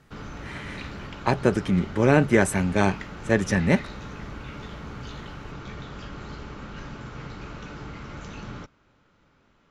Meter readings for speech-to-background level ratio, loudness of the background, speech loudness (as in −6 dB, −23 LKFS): 16.0 dB, −39.0 LKFS, −23.0 LKFS